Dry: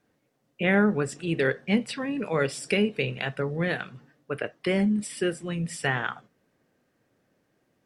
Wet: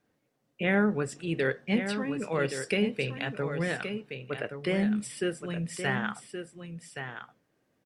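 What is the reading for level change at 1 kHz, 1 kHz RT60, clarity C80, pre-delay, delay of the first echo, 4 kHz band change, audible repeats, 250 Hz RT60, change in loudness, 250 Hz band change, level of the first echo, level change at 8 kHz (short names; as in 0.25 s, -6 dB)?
-3.0 dB, none, none, none, 1.122 s, -3.0 dB, 1, none, -3.5 dB, -3.0 dB, -8.5 dB, -3.0 dB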